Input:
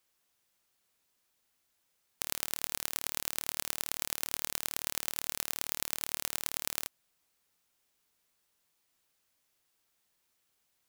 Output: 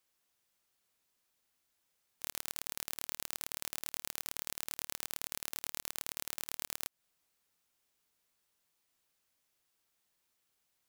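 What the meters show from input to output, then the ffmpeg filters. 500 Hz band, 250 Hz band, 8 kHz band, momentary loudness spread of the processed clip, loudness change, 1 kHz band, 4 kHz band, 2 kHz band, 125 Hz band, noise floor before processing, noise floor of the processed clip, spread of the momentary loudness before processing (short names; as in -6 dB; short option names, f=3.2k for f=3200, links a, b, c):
-5.5 dB, -5.5 dB, -5.5 dB, 2 LU, -5.5 dB, -5.5 dB, -5.5 dB, -5.5 dB, -5.5 dB, -77 dBFS, under -85 dBFS, 1 LU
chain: -af "aeval=exprs='0.75*(cos(1*acos(clip(val(0)/0.75,-1,1)))-cos(1*PI/2))+0.266*(cos(2*acos(clip(val(0)/0.75,-1,1)))-cos(2*PI/2))+0.15*(cos(3*acos(clip(val(0)/0.75,-1,1)))-cos(3*PI/2))+0.335*(cos(6*acos(clip(val(0)/0.75,-1,1)))-cos(6*PI/2))+0.0188*(cos(8*acos(clip(val(0)/0.75,-1,1)))-cos(8*PI/2))':c=same,aeval=exprs='(mod(1.33*val(0)+1,2)-1)/1.33':c=same,alimiter=limit=-15.5dB:level=0:latency=1:release=183,volume=5dB"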